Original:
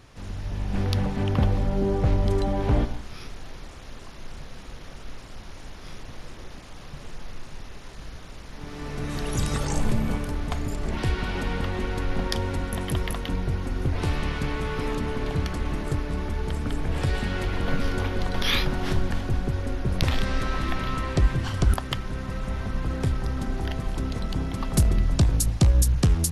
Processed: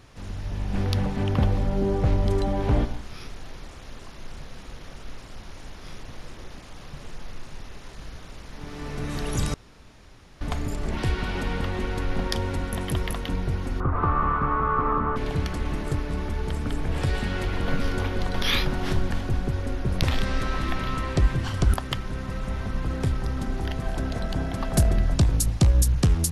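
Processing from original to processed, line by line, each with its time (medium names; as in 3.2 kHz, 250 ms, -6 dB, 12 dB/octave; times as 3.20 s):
9.54–10.41 s: room tone
13.80–15.16 s: resonant low-pass 1.2 kHz, resonance Q 11
23.82–25.14 s: small resonant body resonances 670/1600 Hz, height 9 dB, ringing for 20 ms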